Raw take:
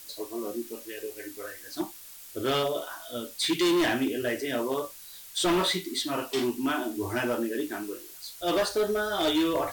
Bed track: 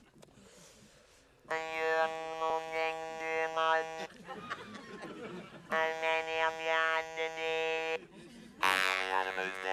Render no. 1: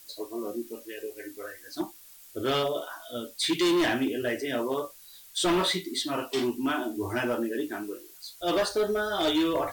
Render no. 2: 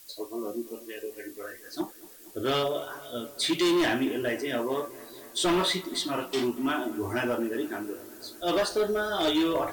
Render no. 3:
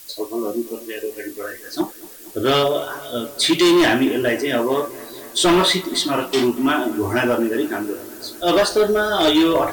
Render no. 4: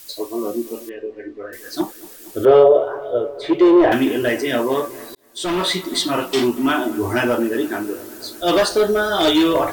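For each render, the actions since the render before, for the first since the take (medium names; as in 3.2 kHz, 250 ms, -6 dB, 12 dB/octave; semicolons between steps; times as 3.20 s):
noise reduction 6 dB, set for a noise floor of -47 dBFS
bucket-brigade echo 233 ms, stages 4096, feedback 77%, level -20 dB
trim +10 dB
0.89–1.53 s: tape spacing loss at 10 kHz 44 dB; 2.45–3.92 s: FFT filter 120 Hz 0 dB, 210 Hz -17 dB, 430 Hz +11 dB, 10 kHz -30 dB; 5.15–5.96 s: fade in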